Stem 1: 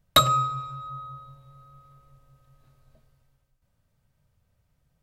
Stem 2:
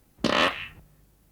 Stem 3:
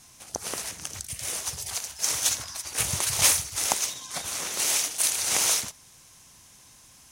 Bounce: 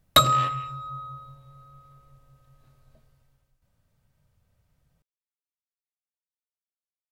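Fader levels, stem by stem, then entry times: +1.0 dB, -14.5 dB, off; 0.00 s, 0.00 s, off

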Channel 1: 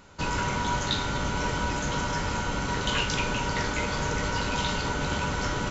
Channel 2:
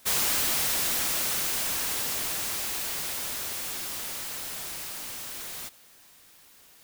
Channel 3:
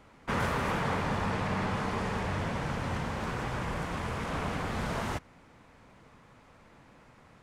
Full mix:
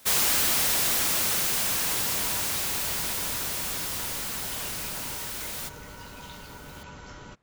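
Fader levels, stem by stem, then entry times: -15.5, +2.5, -13.5 dB; 1.65, 0.00, 0.00 s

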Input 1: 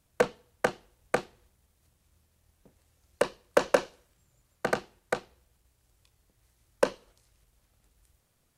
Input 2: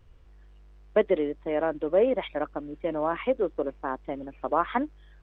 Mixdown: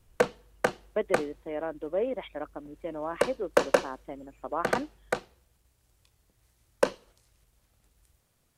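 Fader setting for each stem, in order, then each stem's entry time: +0.5, -7.0 dB; 0.00, 0.00 s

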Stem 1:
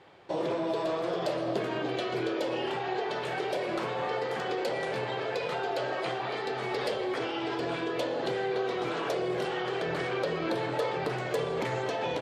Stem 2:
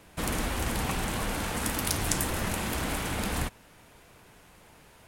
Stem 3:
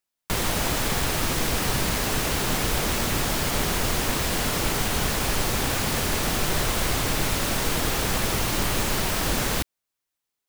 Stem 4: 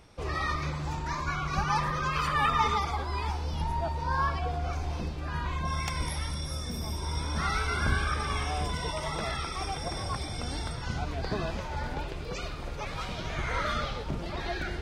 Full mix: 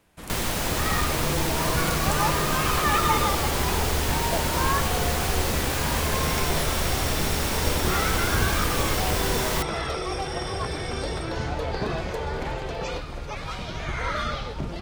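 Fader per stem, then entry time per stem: -2.5, -9.0, -2.0, +2.5 dB; 0.80, 0.00, 0.00, 0.50 s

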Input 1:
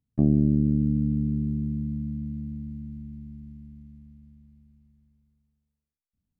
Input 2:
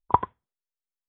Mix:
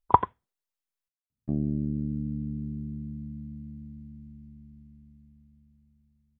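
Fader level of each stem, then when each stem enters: -8.0, +1.5 dB; 1.30, 0.00 s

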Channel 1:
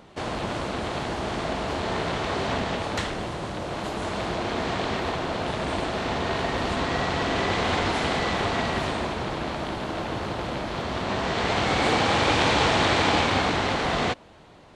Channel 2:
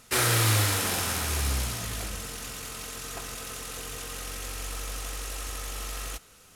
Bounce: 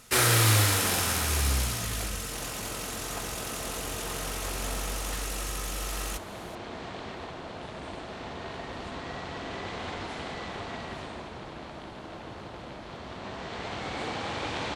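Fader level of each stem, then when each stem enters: -12.0, +1.5 dB; 2.15, 0.00 s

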